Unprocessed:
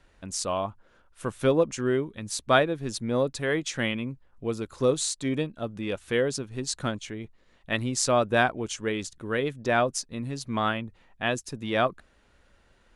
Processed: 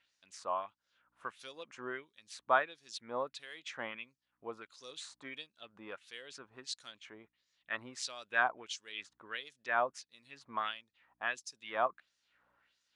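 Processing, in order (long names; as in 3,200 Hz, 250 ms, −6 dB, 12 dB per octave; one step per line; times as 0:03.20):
mains hum 60 Hz, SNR 30 dB
auto-filter band-pass sine 1.5 Hz 930–5,800 Hz
level −1.5 dB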